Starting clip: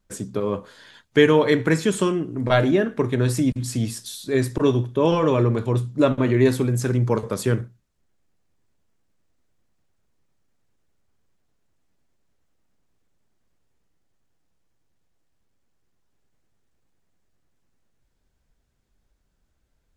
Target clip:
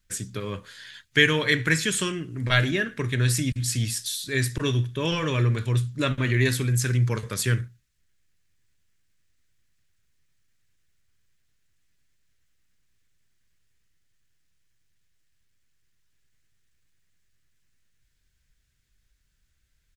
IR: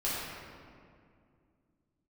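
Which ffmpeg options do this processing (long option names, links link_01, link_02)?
-af "firequalizer=gain_entry='entry(130,0);entry(200,-8);entry(780,-13);entry(1700,5)':delay=0.05:min_phase=1"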